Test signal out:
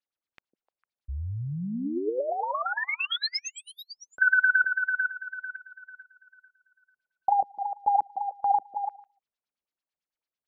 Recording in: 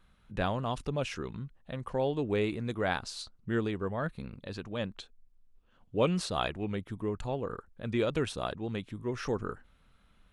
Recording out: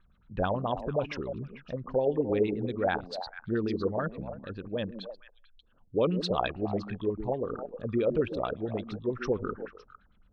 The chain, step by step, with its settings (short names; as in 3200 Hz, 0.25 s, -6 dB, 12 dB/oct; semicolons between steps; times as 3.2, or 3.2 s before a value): formant sharpening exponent 1.5; delay with a stepping band-pass 0.151 s, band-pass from 260 Hz, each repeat 1.4 oct, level -5 dB; LFO low-pass sine 9 Hz 480–5000 Hz